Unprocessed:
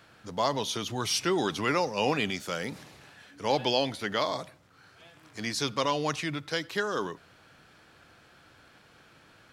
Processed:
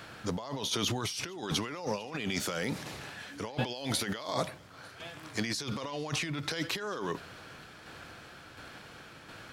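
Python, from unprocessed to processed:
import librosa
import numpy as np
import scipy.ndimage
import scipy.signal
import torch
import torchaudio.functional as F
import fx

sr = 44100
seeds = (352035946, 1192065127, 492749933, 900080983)

p1 = fx.high_shelf(x, sr, hz=5200.0, db=8.0, at=(3.74, 4.33))
p2 = fx.over_compress(p1, sr, threshold_db=-37.0, ratio=-1.0)
p3 = fx.tremolo_shape(p2, sr, shape='saw_down', hz=1.4, depth_pct=40)
p4 = p3 + fx.echo_thinned(p3, sr, ms=450, feedback_pct=63, hz=420.0, wet_db=-24.0, dry=0)
y = F.gain(torch.from_numpy(p4), 3.5).numpy()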